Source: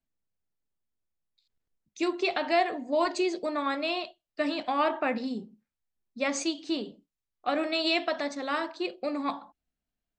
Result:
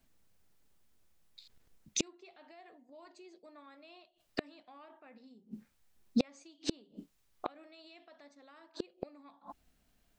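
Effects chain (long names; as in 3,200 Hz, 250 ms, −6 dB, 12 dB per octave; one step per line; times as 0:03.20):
brickwall limiter −22.5 dBFS, peak gain reduction 9.5 dB
gate with flip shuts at −32 dBFS, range −40 dB
level +15.5 dB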